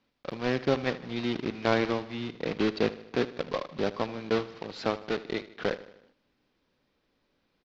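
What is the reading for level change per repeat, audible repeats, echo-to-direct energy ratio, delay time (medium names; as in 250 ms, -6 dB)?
-5.0 dB, 4, -15.0 dB, 77 ms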